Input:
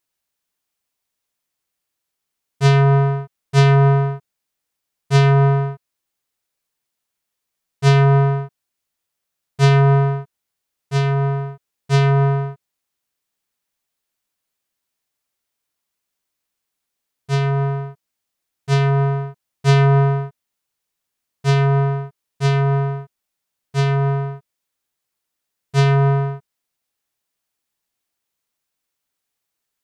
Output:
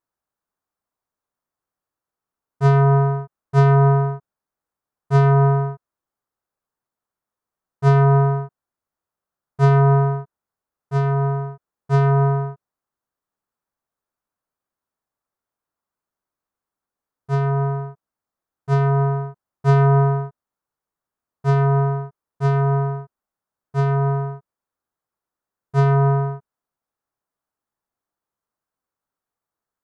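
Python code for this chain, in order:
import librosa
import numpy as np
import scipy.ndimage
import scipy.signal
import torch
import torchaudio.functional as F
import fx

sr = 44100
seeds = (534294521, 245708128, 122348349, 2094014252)

y = fx.high_shelf_res(x, sr, hz=1800.0, db=-11.5, q=1.5)
y = y * librosa.db_to_amplitude(-1.5)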